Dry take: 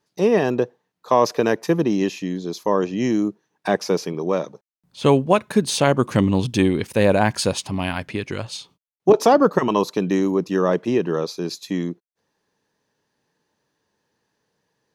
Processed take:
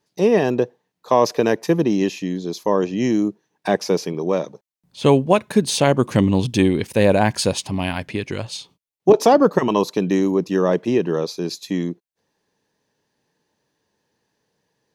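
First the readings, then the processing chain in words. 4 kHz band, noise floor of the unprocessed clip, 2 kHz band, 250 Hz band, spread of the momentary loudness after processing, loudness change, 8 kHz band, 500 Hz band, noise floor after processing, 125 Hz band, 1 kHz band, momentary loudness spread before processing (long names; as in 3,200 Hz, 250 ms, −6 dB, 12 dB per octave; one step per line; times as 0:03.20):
+1.5 dB, −80 dBFS, 0.0 dB, +1.5 dB, 11 LU, +1.0 dB, +1.5 dB, +1.5 dB, −79 dBFS, +1.5 dB, 0.0 dB, 11 LU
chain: parametric band 1,300 Hz −4.5 dB 0.59 octaves
level +1.5 dB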